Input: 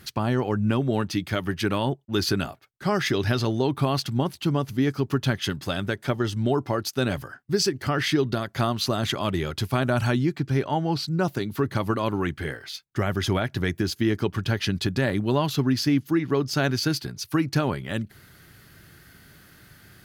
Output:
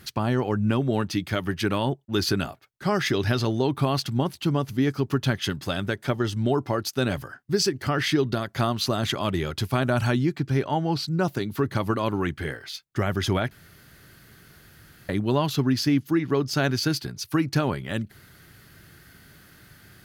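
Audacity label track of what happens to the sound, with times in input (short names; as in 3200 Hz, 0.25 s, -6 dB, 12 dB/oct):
13.510000	15.090000	room tone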